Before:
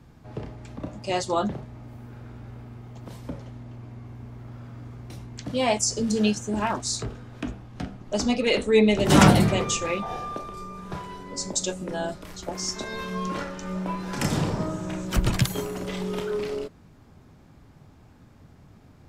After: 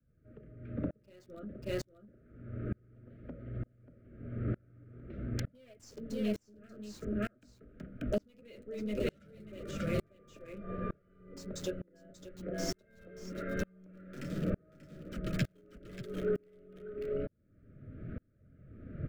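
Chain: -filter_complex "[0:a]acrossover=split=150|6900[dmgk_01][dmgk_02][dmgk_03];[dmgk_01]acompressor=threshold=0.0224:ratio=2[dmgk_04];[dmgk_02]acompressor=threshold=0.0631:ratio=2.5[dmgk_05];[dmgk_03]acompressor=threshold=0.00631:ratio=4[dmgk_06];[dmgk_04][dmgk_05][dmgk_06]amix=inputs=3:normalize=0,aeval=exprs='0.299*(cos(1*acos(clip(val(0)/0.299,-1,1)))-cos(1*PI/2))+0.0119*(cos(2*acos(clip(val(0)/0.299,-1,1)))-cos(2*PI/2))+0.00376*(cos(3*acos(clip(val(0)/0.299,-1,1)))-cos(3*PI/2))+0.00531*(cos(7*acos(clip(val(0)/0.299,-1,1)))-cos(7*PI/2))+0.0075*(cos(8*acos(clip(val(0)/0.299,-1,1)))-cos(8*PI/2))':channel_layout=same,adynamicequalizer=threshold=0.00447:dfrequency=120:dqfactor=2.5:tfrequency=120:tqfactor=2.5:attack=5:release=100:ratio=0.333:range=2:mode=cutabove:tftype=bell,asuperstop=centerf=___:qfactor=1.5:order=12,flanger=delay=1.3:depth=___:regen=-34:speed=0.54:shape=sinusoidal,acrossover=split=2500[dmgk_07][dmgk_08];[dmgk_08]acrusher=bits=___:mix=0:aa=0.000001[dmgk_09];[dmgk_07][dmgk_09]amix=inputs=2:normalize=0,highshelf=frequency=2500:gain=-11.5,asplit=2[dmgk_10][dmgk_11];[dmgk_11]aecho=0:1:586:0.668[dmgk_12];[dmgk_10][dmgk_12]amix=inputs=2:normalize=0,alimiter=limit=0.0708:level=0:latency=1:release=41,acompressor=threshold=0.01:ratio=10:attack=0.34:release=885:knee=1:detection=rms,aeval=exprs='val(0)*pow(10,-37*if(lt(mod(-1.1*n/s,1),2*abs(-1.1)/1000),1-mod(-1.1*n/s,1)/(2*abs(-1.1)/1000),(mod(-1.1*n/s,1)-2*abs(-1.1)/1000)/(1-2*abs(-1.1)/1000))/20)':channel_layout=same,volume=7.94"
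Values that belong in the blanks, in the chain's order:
900, 9, 6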